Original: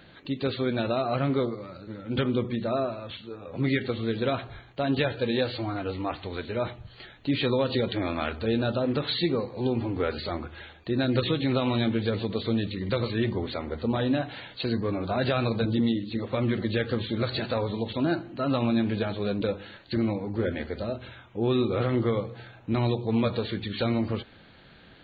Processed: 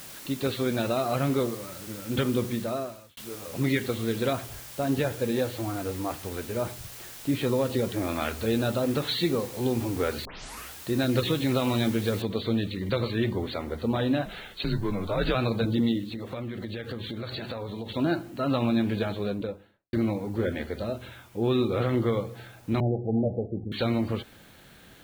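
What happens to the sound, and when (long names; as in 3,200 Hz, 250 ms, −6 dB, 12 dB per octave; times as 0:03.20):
0:02.53–0:03.17: fade out
0:04.33–0:08.09: high-shelf EQ 2,200 Hz −11 dB
0:10.25: tape start 0.49 s
0:12.22: noise floor change −44 dB −60 dB
0:14.25–0:15.35: frequency shifter −92 Hz
0:16.13–0:17.96: downward compressor, threshold −31 dBFS
0:19.07–0:19.93: fade out and dull
0:22.80–0:23.72: Chebyshev low-pass filter 820 Hz, order 10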